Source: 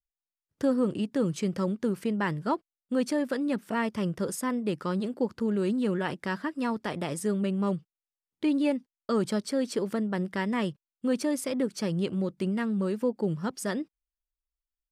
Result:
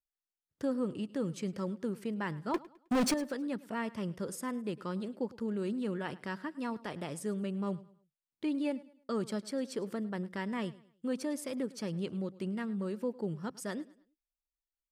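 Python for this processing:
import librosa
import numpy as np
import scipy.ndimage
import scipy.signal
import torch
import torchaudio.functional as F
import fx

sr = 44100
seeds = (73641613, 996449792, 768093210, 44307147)

y = fx.leveller(x, sr, passes=5, at=(2.54, 3.14))
y = fx.echo_feedback(y, sr, ms=105, feedback_pct=35, wet_db=-20)
y = F.gain(torch.from_numpy(y), -7.5).numpy()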